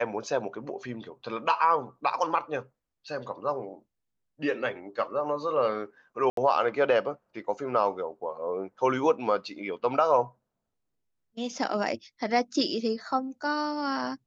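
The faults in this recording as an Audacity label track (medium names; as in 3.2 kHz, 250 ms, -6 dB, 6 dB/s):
6.300000	6.370000	dropout 73 ms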